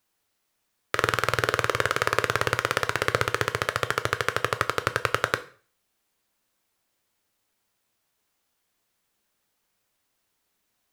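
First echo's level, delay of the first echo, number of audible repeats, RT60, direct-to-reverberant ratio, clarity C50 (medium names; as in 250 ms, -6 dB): no echo, no echo, no echo, 0.45 s, 10.0 dB, 17.0 dB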